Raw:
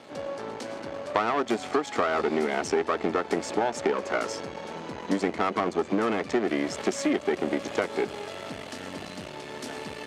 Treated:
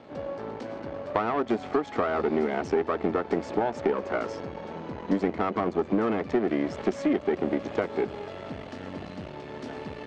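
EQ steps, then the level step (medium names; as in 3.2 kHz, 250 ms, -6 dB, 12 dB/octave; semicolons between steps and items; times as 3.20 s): low-pass 6 kHz 12 dB/octave; tilt EQ -3.5 dB/octave; bass shelf 430 Hz -6 dB; -1.0 dB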